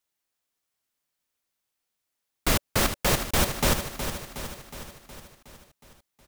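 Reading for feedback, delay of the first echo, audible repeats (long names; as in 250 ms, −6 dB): 59%, 366 ms, 6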